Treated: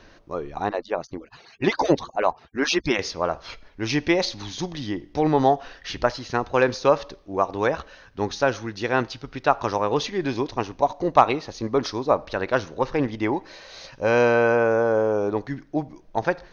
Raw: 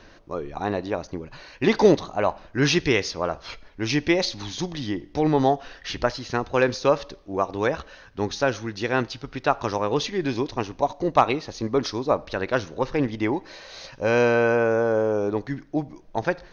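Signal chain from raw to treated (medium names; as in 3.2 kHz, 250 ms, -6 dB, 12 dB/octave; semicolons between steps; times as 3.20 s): 0.69–2.99 s: harmonic-percussive separation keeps percussive; dynamic bell 890 Hz, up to +4 dB, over -33 dBFS, Q 0.78; trim -1 dB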